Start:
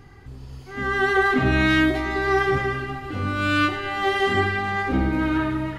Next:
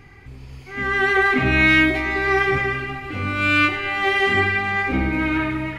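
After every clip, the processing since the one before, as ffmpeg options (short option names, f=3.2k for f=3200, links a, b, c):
-af "equalizer=f=2.3k:t=o:w=0.42:g=13.5"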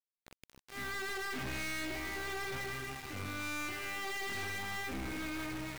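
-af "aeval=exprs='val(0)*gte(abs(val(0)),0.0282)':c=same,aeval=exprs='(tanh(31.6*val(0)+0.5)-tanh(0.5))/31.6':c=same,volume=-8dB"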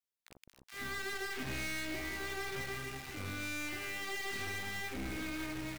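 -filter_complex "[0:a]acrossover=split=1000[a][b];[a]adelay=40[c];[c][b]amix=inputs=2:normalize=0"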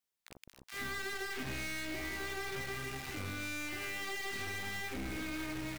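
-af "acompressor=threshold=-41dB:ratio=3,volume=4dB"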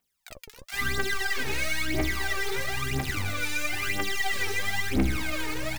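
-af "aphaser=in_gain=1:out_gain=1:delay=2.4:decay=0.75:speed=1:type=triangular,volume=7dB"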